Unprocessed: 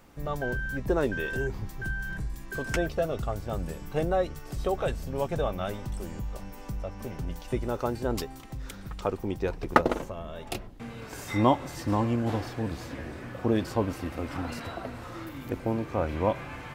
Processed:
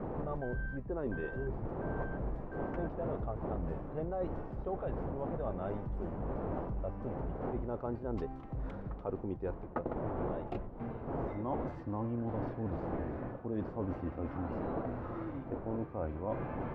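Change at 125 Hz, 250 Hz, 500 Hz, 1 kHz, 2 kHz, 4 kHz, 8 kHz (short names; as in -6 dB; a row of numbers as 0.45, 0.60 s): -6.0 dB, -6.5 dB, -7.5 dB, -9.5 dB, -13.5 dB, under -25 dB, under -35 dB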